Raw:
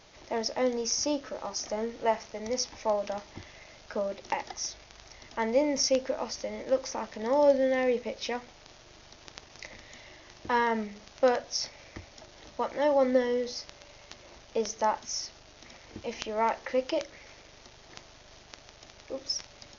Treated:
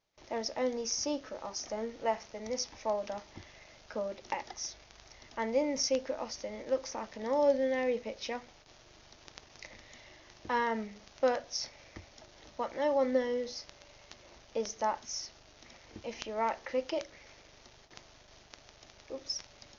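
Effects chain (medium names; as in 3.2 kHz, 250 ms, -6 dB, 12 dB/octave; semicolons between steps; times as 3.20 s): gate with hold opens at -41 dBFS; trim -4.5 dB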